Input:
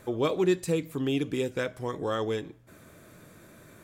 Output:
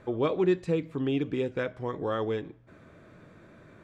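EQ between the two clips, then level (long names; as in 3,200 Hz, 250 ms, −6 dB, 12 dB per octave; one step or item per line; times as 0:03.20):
Bessel low-pass filter 2,500 Hz, order 2
0.0 dB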